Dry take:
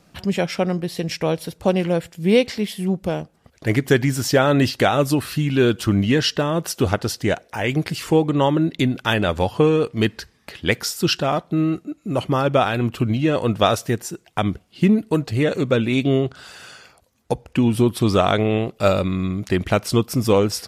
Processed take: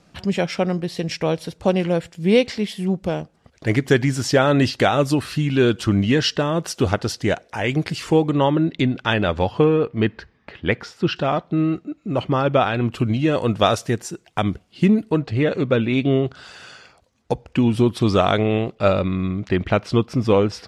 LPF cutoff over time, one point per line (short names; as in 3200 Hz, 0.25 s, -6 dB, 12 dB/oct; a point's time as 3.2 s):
8100 Hz
from 8.37 s 4400 Hz
from 9.64 s 2400 Hz
from 11.16 s 4300 Hz
from 12.91 s 8900 Hz
from 15.11 s 3700 Hz
from 16.25 s 6500 Hz
from 18.75 s 3600 Hz